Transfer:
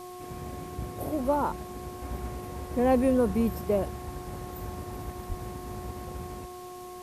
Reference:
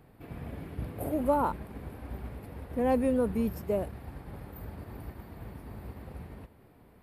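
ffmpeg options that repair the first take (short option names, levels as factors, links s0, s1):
-filter_complex "[0:a]bandreject=f=361.5:t=h:w=4,bandreject=f=723:t=h:w=4,bandreject=f=1084.5:t=h:w=4,asplit=3[s0][s1][s2];[s0]afade=t=out:st=5.28:d=0.02[s3];[s1]highpass=f=140:w=0.5412,highpass=f=140:w=1.3066,afade=t=in:st=5.28:d=0.02,afade=t=out:st=5.4:d=0.02[s4];[s2]afade=t=in:st=5.4:d=0.02[s5];[s3][s4][s5]amix=inputs=3:normalize=0,afwtdn=0.0025,asetnsamples=n=441:p=0,asendcmd='2.02 volume volume -3.5dB',volume=1"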